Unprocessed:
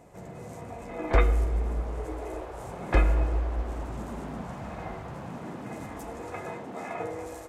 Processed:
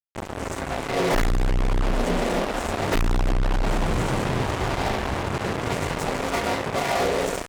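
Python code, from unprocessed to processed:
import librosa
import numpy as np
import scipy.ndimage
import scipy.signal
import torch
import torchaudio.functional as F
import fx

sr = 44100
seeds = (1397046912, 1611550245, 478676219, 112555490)

y = fx.pitch_keep_formants(x, sr, semitones=-10.0)
y = fx.fuzz(y, sr, gain_db=42.0, gate_db=-41.0)
y = F.gain(torch.from_numpy(y), -5.0).numpy()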